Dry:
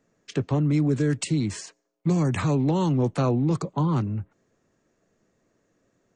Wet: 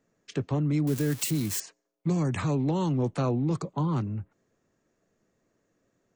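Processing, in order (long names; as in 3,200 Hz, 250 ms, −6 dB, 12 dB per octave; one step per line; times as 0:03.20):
0:00.87–0:01.60: spike at every zero crossing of −21.5 dBFS
level −4 dB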